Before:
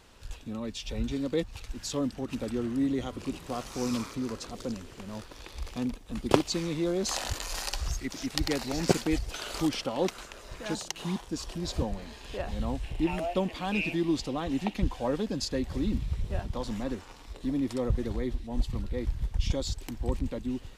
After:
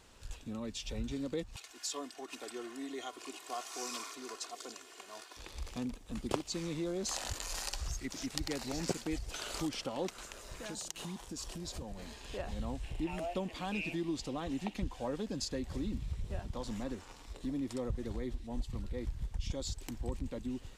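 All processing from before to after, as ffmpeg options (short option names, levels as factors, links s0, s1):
-filter_complex "[0:a]asettb=1/sr,asplit=3[s0][s1][s2];[s0]atrim=end=1.564[s3];[s1]atrim=start=1.56:end=5.37,asetpts=PTS-STARTPTS,afade=t=in:d=0.004:c=qsin,afade=t=out:st=3.806:d=0.004:c=qsin,highpass=600,aecho=1:1:2.8:0.72,atrim=end_sample=168021[s4];[s2]atrim=start=5.366[s5];[s3][s4]acrossfade=d=0.004:c1=hsin:c2=qsin[s6];[s6][s5]acrossfade=d=0.004:c1=qsin:c2=hsin,asettb=1/sr,asplit=3[s7][s8][s9];[s7]atrim=end=10.234[s10];[s8]atrim=start=10.23:end=12.14,asetpts=PTS-STARTPTS,afade=t=in:d=0.004:c=qsin,afade=t=out:st=1.906:d=0.004:c=qsin,highshelf=f=7800:g=6,acompressor=threshold=0.0178:ratio=5:attack=3.2:release=140:knee=1:detection=peak[s11];[s9]atrim=start=12.136[s12];[s10][s11]acrossfade=d=0.004:c1=hsin:c2=qsin[s13];[s13][s12]acrossfade=d=0.004:c1=qsin:c2=hsin,equalizer=f=7600:t=o:w=0.74:g=4.5,acompressor=threshold=0.0251:ratio=2,volume=0.631"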